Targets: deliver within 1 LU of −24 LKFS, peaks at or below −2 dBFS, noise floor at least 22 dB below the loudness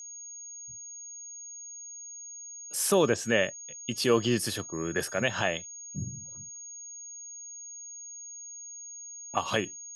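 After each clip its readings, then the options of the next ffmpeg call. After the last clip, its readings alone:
interfering tone 6,600 Hz; level of the tone −41 dBFS; integrated loudness −32.0 LKFS; sample peak −10.5 dBFS; target loudness −24.0 LKFS
→ -af "bandreject=frequency=6600:width=30"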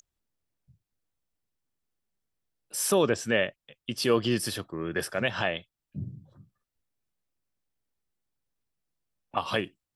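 interfering tone none found; integrated loudness −29.0 LKFS; sample peak −10.5 dBFS; target loudness −24.0 LKFS
→ -af "volume=5dB"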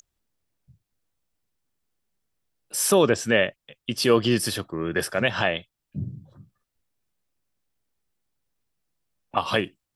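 integrated loudness −24.0 LKFS; sample peak −5.5 dBFS; background noise floor −82 dBFS

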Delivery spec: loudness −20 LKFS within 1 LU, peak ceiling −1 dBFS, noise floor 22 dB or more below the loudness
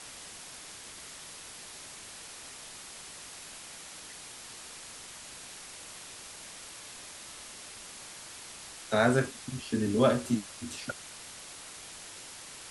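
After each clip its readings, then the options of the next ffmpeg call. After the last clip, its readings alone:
background noise floor −47 dBFS; target noise floor −58 dBFS; integrated loudness −36.0 LKFS; sample peak −12.5 dBFS; target loudness −20.0 LKFS
→ -af "afftdn=noise_reduction=11:noise_floor=-47"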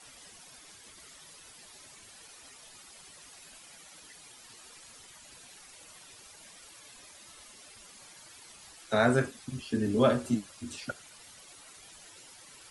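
background noise floor −53 dBFS; integrated loudness −30.0 LKFS; sample peak −12.5 dBFS; target loudness −20.0 LKFS
→ -af "volume=10dB"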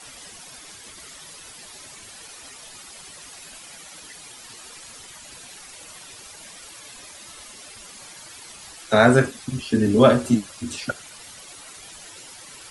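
integrated loudness −20.0 LKFS; sample peak −2.5 dBFS; background noise floor −43 dBFS

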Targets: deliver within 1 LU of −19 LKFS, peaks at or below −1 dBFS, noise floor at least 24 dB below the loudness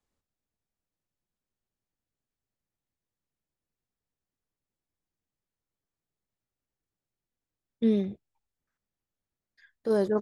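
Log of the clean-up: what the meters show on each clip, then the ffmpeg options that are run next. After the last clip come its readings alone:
integrated loudness −28.5 LKFS; sample peak −14.5 dBFS; target loudness −19.0 LKFS
→ -af "volume=9.5dB"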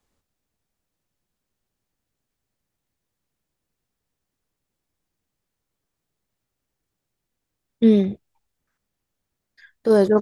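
integrated loudness −19.0 LKFS; sample peak −5.0 dBFS; background noise floor −82 dBFS

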